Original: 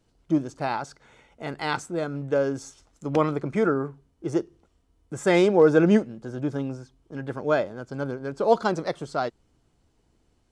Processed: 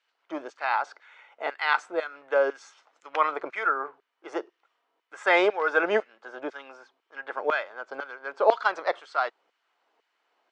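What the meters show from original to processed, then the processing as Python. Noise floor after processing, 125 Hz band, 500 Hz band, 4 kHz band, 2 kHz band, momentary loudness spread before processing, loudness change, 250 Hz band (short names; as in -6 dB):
-78 dBFS, under -30 dB, -4.0 dB, +0.5 dB, +6.0 dB, 18 LU, -2.5 dB, -14.5 dB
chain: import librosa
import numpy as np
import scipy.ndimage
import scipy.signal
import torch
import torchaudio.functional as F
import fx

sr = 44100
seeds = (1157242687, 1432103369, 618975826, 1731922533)

y = fx.filter_lfo_highpass(x, sr, shape='saw_down', hz=2.0, low_hz=560.0, high_hz=2000.0, q=0.91)
y = fx.bandpass_edges(y, sr, low_hz=350.0, high_hz=2600.0)
y = y * librosa.db_to_amplitude(6.5)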